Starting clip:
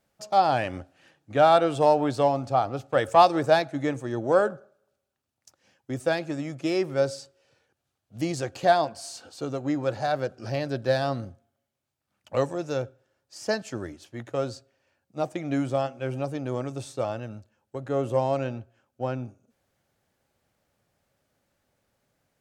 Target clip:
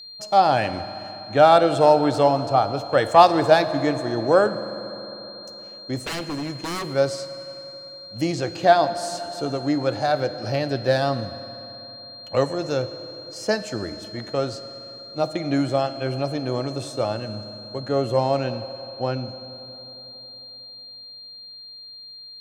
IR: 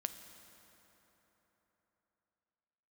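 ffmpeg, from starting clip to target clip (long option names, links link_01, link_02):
-filter_complex "[0:a]asplit=3[link_01][link_02][link_03];[link_01]afade=type=out:start_time=5.95:duration=0.02[link_04];[link_02]aeval=exprs='0.0398*(abs(mod(val(0)/0.0398+3,4)-2)-1)':channel_layout=same,afade=type=in:start_time=5.95:duration=0.02,afade=type=out:start_time=6.84:duration=0.02[link_05];[link_03]afade=type=in:start_time=6.84:duration=0.02[link_06];[link_04][link_05][link_06]amix=inputs=3:normalize=0,aeval=exprs='val(0)+0.00708*sin(2*PI*4200*n/s)':channel_layout=same,asettb=1/sr,asplit=3[link_07][link_08][link_09];[link_07]atrim=end=8.334[link_10];[link_08]atrim=start=8.33:end=8.97,asetpts=PTS-STARTPTS,afade=type=in:duration=0.004:curve=qsin,afade=type=out:start_time=0.636:duration=0.004:curve=qsin,acrossover=split=6700[link_11][link_12];[link_12]acompressor=threshold=-57dB:ratio=4:attack=1:release=60[link_13];[link_11][link_13]amix=inputs=2:normalize=0[link_14];[link_09]atrim=start=8.966[link_15];[link_10][link_14]acrossfade=duration=0.004:curve1=hsin:curve2=qsin[link_16];[link_16][link_15]acrossfade=duration=0.004:curve1=qsin:curve2=hsin,asplit=2[link_17][link_18];[1:a]atrim=start_sample=2205[link_19];[link_18][link_19]afir=irnorm=-1:irlink=0,volume=8.5dB[link_20];[link_17][link_20]amix=inputs=2:normalize=0,volume=-6dB"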